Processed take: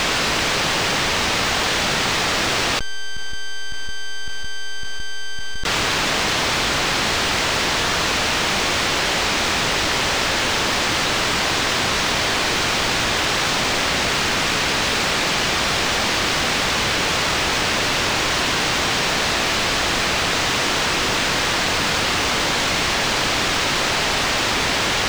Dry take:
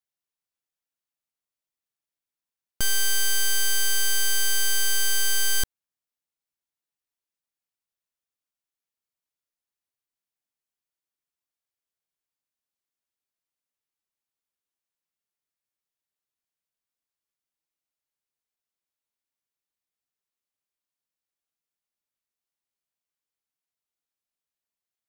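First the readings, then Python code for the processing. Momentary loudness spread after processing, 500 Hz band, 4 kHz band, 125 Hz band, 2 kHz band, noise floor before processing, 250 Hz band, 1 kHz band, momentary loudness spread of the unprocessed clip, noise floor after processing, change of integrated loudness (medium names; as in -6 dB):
9 LU, +28.5 dB, +15.0 dB, +22.0 dB, +16.5 dB, under -85 dBFS, +33.5 dB, +30.5 dB, 3 LU, -20 dBFS, +5.0 dB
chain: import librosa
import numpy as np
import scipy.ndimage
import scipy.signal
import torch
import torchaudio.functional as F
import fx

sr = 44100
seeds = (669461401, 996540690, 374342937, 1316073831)

y = fx.chopper(x, sr, hz=1.8, depth_pct=60, duty_pct=70)
y = fx.dmg_noise_colour(y, sr, seeds[0], colour='white', level_db=-45.0)
y = fx.air_absorb(y, sr, metres=150.0)
y = fx.env_flatten(y, sr, amount_pct=100)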